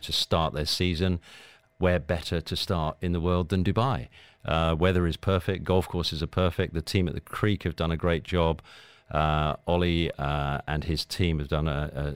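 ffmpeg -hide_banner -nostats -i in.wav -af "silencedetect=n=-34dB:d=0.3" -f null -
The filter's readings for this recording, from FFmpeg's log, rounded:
silence_start: 1.17
silence_end: 1.81 | silence_duration: 0.64
silence_start: 4.04
silence_end: 4.45 | silence_duration: 0.41
silence_start: 8.59
silence_end: 9.11 | silence_duration: 0.52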